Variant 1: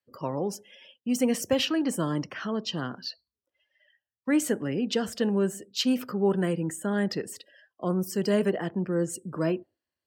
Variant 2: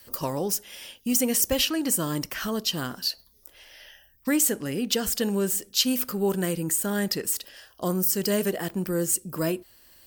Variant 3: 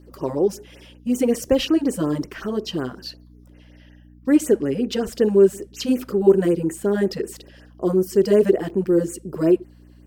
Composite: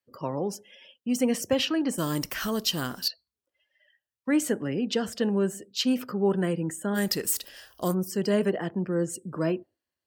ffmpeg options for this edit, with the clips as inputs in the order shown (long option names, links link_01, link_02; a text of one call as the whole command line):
ffmpeg -i take0.wav -i take1.wav -filter_complex "[1:a]asplit=2[link_01][link_02];[0:a]asplit=3[link_03][link_04][link_05];[link_03]atrim=end=1.982[link_06];[link_01]atrim=start=1.978:end=3.082[link_07];[link_04]atrim=start=3.078:end=6.98[link_08];[link_02]atrim=start=6.94:end=7.95[link_09];[link_05]atrim=start=7.91[link_10];[link_06][link_07]acrossfade=duration=0.004:curve1=hsin:curve2=hsin[link_11];[link_11][link_08]acrossfade=duration=0.004:curve1=hsin:curve2=hsin[link_12];[link_12][link_09]acrossfade=duration=0.04:curve1=tri:curve2=tri[link_13];[link_13][link_10]acrossfade=duration=0.04:curve1=tri:curve2=tri" out.wav